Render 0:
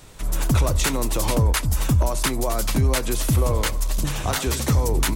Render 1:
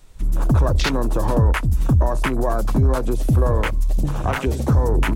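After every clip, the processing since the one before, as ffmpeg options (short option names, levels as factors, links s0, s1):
-filter_complex "[0:a]afwtdn=0.0355,asplit=2[s0][s1];[s1]alimiter=limit=0.0841:level=0:latency=1:release=305,volume=1.19[s2];[s0][s2]amix=inputs=2:normalize=0"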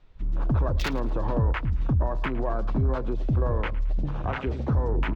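-filter_complex "[0:a]acrossover=split=4200[s0][s1];[s1]acrusher=bits=3:mix=0:aa=0.5[s2];[s0][s2]amix=inputs=2:normalize=0,aecho=1:1:110|220|330:0.112|0.0393|0.0137,volume=0.422"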